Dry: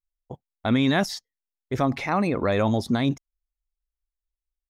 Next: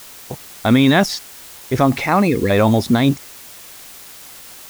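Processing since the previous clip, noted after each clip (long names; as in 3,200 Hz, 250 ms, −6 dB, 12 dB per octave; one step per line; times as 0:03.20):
gain on a spectral selection 0:02.28–0:02.50, 510–1,600 Hz −21 dB
in parallel at −8 dB: bit-depth reduction 6 bits, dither triangular
on the sum: level +5.5 dB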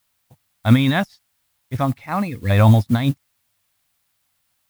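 graphic EQ with 15 bands 100 Hz +10 dB, 400 Hz −11 dB, 6,300 Hz −4 dB
expander for the loud parts 2.5 to 1, over −30 dBFS
level +2 dB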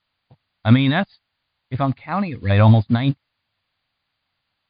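linear-phase brick-wall low-pass 4,900 Hz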